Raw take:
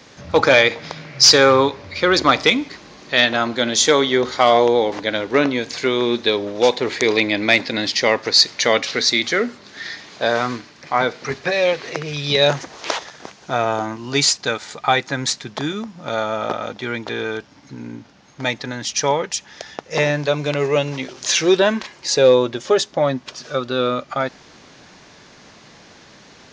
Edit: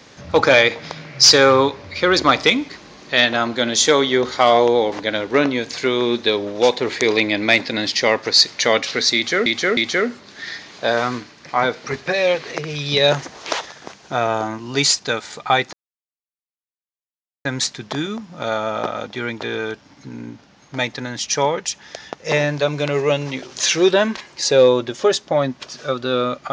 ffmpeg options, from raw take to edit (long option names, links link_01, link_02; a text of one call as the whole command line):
ffmpeg -i in.wav -filter_complex "[0:a]asplit=4[link_01][link_02][link_03][link_04];[link_01]atrim=end=9.462[link_05];[link_02]atrim=start=9.148:end=9.462[link_06];[link_03]atrim=start=9.148:end=15.11,asetpts=PTS-STARTPTS,afade=type=out:start_time=5.958:duration=0.004:curve=hsin,apad=pad_dur=1.72[link_07];[link_04]atrim=start=15.11,asetpts=PTS-STARTPTS,afade=type=in:duration=0.004:curve=hsin[link_08];[link_05][link_06]acrossfade=duration=0.004:curve1=hsin:curve2=hsin[link_09];[link_07][link_08]concat=n=2:v=0:a=1[link_10];[link_09][link_10]acrossfade=duration=0.004:curve1=hsin:curve2=hsin" out.wav